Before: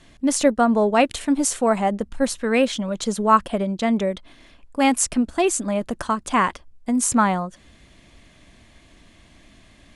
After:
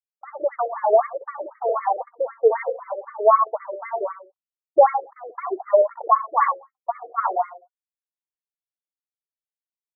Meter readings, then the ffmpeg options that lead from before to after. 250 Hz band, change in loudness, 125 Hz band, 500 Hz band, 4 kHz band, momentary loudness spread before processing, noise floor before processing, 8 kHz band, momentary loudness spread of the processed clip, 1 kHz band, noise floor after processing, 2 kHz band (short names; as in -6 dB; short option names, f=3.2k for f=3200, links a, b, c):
-24.5 dB, -1.5 dB, under -40 dB, +2.0 dB, under -40 dB, 8 LU, -53 dBFS, under -40 dB, 14 LU, +1.5 dB, under -85 dBFS, -9.0 dB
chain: -filter_complex "[0:a]afftdn=nr=15:nf=-34,aeval=exprs='sgn(val(0))*max(abs(val(0))-0.0316,0)':c=same,highshelf=f=5.4k:g=-11,alimiter=limit=-13.5dB:level=0:latency=1:release=236,aphaser=in_gain=1:out_gain=1:delay=4.4:decay=0.69:speed=0.21:type=sinusoidal,equalizer=f=1.6k:w=3.1:g=-10.5,agate=range=-57dB:threshold=-44dB:ratio=16:detection=peak,asplit=2[a][b];[b]adelay=64,lowpass=f=1.9k:p=1,volume=-5dB,asplit=2[c][d];[d]adelay=64,lowpass=f=1.9k:p=1,volume=0.25,asplit=2[e][f];[f]adelay=64,lowpass=f=1.9k:p=1,volume=0.25[g];[a][c][e][g]amix=inputs=4:normalize=0,afftfilt=real='re*between(b*sr/1024,460*pow(1600/460,0.5+0.5*sin(2*PI*3.9*pts/sr))/1.41,460*pow(1600/460,0.5+0.5*sin(2*PI*3.9*pts/sr))*1.41)':imag='im*between(b*sr/1024,460*pow(1600/460,0.5+0.5*sin(2*PI*3.9*pts/sr))/1.41,460*pow(1600/460,0.5+0.5*sin(2*PI*3.9*pts/sr))*1.41)':win_size=1024:overlap=0.75,volume=8dB"